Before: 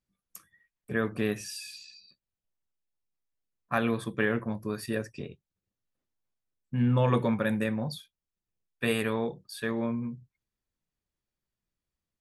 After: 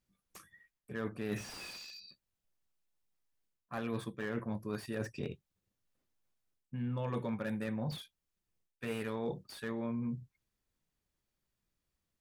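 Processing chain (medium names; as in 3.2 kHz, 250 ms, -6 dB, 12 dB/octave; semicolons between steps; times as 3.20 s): reverse; compression 8:1, threshold -37 dBFS, peak gain reduction 16 dB; reverse; slew-rate limiter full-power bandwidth 15 Hz; trim +3 dB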